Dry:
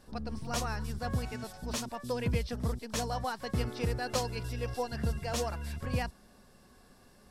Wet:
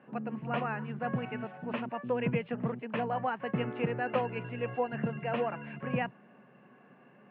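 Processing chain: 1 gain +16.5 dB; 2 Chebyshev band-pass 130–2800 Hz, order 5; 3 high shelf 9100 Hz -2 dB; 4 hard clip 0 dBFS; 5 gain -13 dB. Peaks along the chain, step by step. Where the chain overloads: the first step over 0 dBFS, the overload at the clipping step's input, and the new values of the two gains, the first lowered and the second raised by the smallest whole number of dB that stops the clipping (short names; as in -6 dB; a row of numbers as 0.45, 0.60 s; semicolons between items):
-1.0, -3.5, -3.5, -3.5, -16.5 dBFS; no overload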